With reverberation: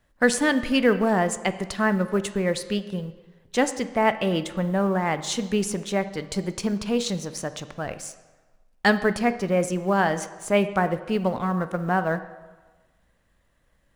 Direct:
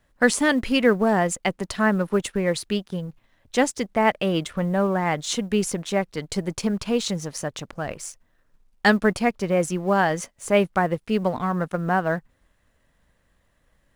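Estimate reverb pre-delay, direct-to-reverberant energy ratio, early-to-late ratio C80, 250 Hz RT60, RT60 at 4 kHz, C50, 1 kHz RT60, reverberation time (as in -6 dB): 11 ms, 11.0 dB, 14.5 dB, 1.1 s, 0.95 s, 13.0 dB, 1.3 s, 1.3 s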